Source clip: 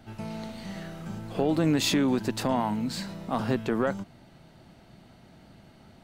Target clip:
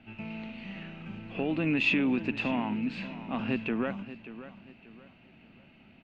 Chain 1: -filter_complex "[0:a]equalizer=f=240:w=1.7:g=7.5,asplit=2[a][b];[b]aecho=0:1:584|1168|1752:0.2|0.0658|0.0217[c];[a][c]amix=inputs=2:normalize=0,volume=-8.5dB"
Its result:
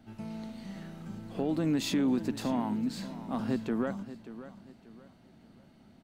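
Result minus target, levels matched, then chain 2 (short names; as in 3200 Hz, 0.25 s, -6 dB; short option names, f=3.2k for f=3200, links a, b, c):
2000 Hz band -11.5 dB
-filter_complex "[0:a]lowpass=f=2.6k:t=q:w=9.5,equalizer=f=240:w=1.7:g=7.5,asplit=2[a][b];[b]aecho=0:1:584|1168|1752:0.2|0.0658|0.0217[c];[a][c]amix=inputs=2:normalize=0,volume=-8.5dB"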